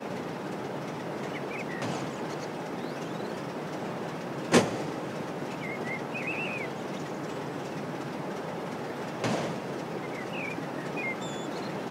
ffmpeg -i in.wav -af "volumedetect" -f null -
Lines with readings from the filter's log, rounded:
mean_volume: -33.5 dB
max_volume: -7.2 dB